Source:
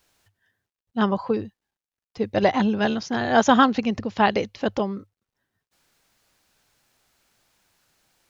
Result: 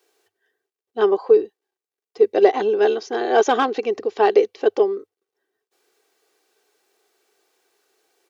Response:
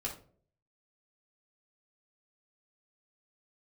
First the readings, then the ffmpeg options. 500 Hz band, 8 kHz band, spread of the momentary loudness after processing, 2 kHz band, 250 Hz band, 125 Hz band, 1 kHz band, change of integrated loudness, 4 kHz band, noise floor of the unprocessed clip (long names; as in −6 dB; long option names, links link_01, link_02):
+8.5 dB, can't be measured, 8 LU, −2.0 dB, −6.0 dB, below −15 dB, 0.0 dB, +3.5 dB, −2.5 dB, below −85 dBFS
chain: -af "aecho=1:1:2.6:0.45,asoftclip=type=tanh:threshold=-8dB,highpass=frequency=410:width_type=q:width=4.9,volume=-2.5dB"